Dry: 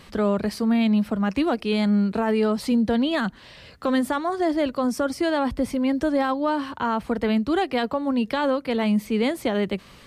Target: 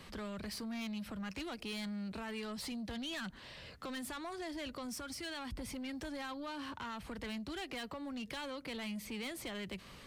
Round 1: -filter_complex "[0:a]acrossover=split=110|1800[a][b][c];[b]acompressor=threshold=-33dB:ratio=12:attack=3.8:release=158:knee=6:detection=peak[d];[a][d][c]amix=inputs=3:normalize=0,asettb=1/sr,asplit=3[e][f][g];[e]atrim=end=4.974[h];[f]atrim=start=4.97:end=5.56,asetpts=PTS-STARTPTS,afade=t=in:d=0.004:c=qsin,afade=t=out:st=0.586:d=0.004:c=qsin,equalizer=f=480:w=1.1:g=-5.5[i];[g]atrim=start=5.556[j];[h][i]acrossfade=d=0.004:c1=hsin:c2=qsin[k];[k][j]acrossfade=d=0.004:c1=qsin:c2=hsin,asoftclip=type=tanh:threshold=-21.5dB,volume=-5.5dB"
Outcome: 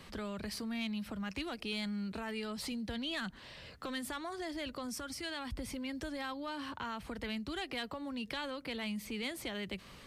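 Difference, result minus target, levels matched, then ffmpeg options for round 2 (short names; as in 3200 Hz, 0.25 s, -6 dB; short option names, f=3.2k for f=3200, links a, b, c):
soft clip: distortion -13 dB
-filter_complex "[0:a]acrossover=split=110|1800[a][b][c];[b]acompressor=threshold=-33dB:ratio=12:attack=3.8:release=158:knee=6:detection=peak[d];[a][d][c]amix=inputs=3:normalize=0,asettb=1/sr,asplit=3[e][f][g];[e]atrim=end=4.974[h];[f]atrim=start=4.97:end=5.56,asetpts=PTS-STARTPTS,afade=t=in:d=0.004:c=qsin,afade=t=out:st=0.586:d=0.004:c=qsin,equalizer=f=480:w=1.1:g=-5.5[i];[g]atrim=start=5.556[j];[h][i]acrossfade=d=0.004:c1=hsin:c2=qsin[k];[k][j]acrossfade=d=0.004:c1=qsin:c2=hsin,asoftclip=type=tanh:threshold=-31.5dB,volume=-5.5dB"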